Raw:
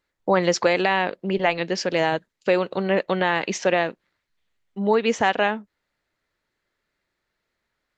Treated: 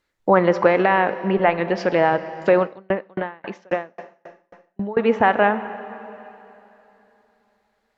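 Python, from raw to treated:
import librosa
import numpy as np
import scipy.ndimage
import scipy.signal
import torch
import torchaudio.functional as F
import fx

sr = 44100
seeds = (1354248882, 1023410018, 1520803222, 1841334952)

y = fx.env_lowpass_down(x, sr, base_hz=1600.0, full_db=-19.5)
y = fx.dynamic_eq(y, sr, hz=1400.0, q=0.87, threshold_db=-31.0, ratio=4.0, max_db=3)
y = fx.rev_plate(y, sr, seeds[0], rt60_s=3.2, hf_ratio=0.9, predelay_ms=0, drr_db=11.5)
y = fx.tremolo_decay(y, sr, direction='decaying', hz=3.7, depth_db=38, at=(2.63, 4.97))
y = y * 10.0 ** (3.5 / 20.0)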